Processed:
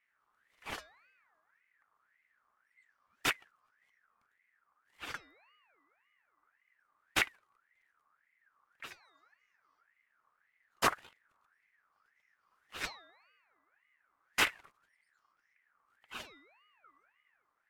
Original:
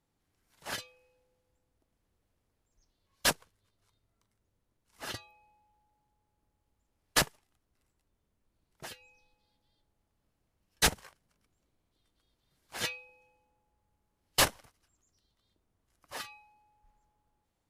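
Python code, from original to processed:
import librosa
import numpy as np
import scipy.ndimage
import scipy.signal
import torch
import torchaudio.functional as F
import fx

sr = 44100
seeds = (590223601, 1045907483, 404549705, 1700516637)

y = fx.tilt_shelf(x, sr, db=7.0, hz=1400.0)
y = fx.wow_flutter(y, sr, seeds[0], rate_hz=2.1, depth_cents=21.0)
y = fx.ring_lfo(y, sr, carrier_hz=1600.0, swing_pct=30, hz=1.8)
y = y * librosa.db_to_amplitude(-1.5)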